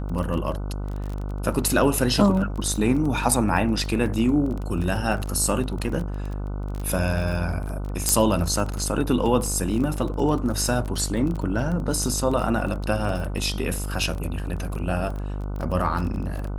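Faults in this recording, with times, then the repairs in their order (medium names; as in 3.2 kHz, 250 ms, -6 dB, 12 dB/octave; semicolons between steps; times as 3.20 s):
buzz 50 Hz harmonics 30 -29 dBFS
crackle 21 per s -28 dBFS
8.09 s: pop -4 dBFS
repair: de-click; de-hum 50 Hz, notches 30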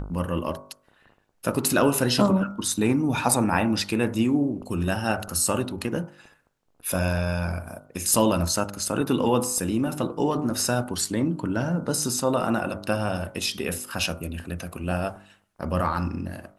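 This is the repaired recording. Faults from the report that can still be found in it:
nothing left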